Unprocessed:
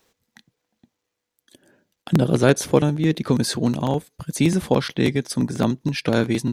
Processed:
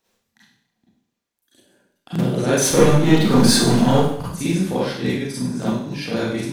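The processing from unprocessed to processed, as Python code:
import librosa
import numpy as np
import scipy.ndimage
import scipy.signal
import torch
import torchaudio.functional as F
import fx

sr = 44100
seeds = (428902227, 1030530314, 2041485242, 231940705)

y = fx.leveller(x, sr, passes=3, at=(2.57, 4.26))
y = fx.rev_schroeder(y, sr, rt60_s=0.66, comb_ms=32, drr_db=-9.0)
y = F.gain(torch.from_numpy(y), -11.0).numpy()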